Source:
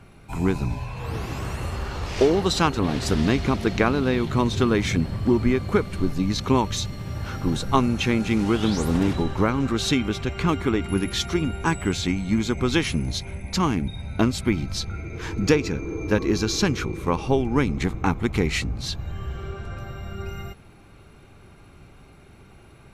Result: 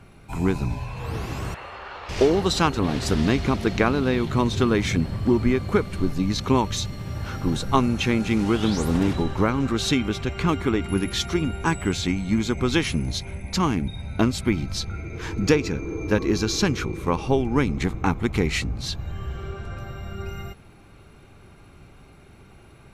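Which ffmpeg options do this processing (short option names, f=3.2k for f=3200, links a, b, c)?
-filter_complex "[0:a]asettb=1/sr,asplit=3[a][b][c];[a]atrim=end=1.544[d];[b]atrim=start=1.54:end=2.09,asetpts=PTS-STARTPTS,afade=t=in:d=0.004:c=qsin,afade=t=out:st=0.546:d=0.004:c=qsin,acrossover=split=480 3800:gain=0.0891 1 0.0708[e][f][g];[e][f][g]amix=inputs=3:normalize=0[h];[c]atrim=start=2.086[i];[d][h]acrossfade=d=0.004:c1=hsin:c2=qsin[j];[j][i]acrossfade=d=0.004:c1=qsin:c2=hsin"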